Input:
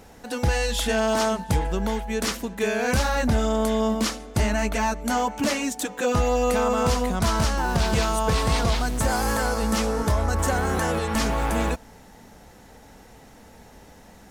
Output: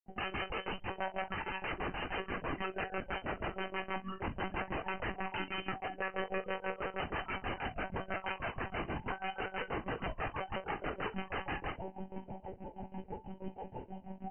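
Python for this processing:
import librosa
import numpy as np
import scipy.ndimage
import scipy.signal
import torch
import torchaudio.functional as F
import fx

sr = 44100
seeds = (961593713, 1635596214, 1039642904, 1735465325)

y = fx.low_shelf(x, sr, hz=190.0, db=-7.0)
y = fx.over_compress(y, sr, threshold_db=-35.0, ratio=-1.0)
y = fx.granulator(y, sr, seeds[0], grain_ms=136.0, per_s=6.2, spray_ms=100.0, spread_st=0)
y = fx.spec_topn(y, sr, count=8)
y = 10.0 ** (-29.5 / 20.0) * np.tanh(y / 10.0 ** (-29.5 / 20.0))
y = fx.quant_float(y, sr, bits=2)
y = (np.mod(10.0 ** (38.0 / 20.0) * y + 1.0, 2.0) - 1.0) / 10.0 ** (38.0 / 20.0)
y = fx.brickwall_lowpass(y, sr, high_hz=3100.0)
y = fx.room_early_taps(y, sr, ms=(24, 57), db=(-6.0, -15.5))
y = fx.lpc_monotone(y, sr, seeds[1], pitch_hz=190.0, order=16)
y = y * 10.0 ** (6.5 / 20.0)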